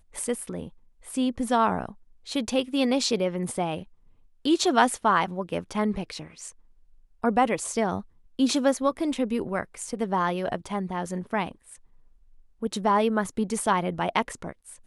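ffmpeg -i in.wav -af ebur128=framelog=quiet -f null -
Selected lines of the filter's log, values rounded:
Integrated loudness:
  I:         -26.6 LUFS
  Threshold: -37.5 LUFS
Loudness range:
  LRA:         3.9 LU
  Threshold: -47.3 LUFS
  LRA low:   -29.4 LUFS
  LRA high:  -25.5 LUFS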